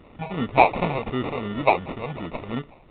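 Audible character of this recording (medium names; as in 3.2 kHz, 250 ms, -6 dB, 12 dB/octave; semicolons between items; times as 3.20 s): phasing stages 4, 2.8 Hz, lowest notch 280–1300 Hz; aliases and images of a low sample rate 1.6 kHz, jitter 0%; A-law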